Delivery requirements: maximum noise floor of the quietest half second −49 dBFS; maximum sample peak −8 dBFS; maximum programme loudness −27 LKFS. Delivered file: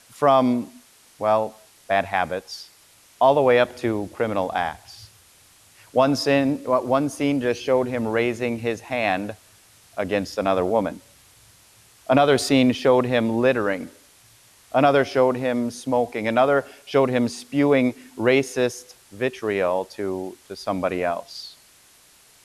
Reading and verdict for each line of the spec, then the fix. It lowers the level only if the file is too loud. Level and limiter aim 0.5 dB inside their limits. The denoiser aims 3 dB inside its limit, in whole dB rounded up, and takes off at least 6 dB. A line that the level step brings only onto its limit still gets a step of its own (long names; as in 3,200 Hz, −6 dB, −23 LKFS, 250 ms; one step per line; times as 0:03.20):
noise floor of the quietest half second −54 dBFS: in spec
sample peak −6.0 dBFS: out of spec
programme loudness −22.0 LKFS: out of spec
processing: level −5.5 dB